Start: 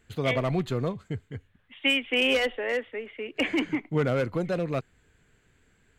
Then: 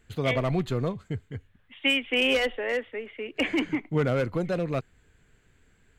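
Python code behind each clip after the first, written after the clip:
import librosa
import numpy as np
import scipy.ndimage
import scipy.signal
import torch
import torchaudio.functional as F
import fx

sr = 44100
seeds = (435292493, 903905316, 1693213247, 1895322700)

y = fx.low_shelf(x, sr, hz=63.0, db=6.0)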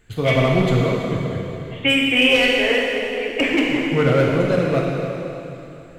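y = fx.rev_plate(x, sr, seeds[0], rt60_s=3.1, hf_ratio=0.95, predelay_ms=0, drr_db=-3.0)
y = y * librosa.db_to_amplitude(5.0)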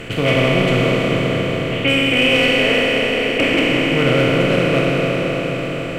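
y = fx.bin_compress(x, sr, power=0.4)
y = y * librosa.db_to_amplitude(-3.5)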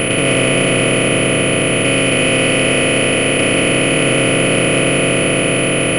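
y = fx.bin_compress(x, sr, power=0.2)
y = fx.pwm(y, sr, carrier_hz=10000.0)
y = y * librosa.db_to_amplitude(-4.5)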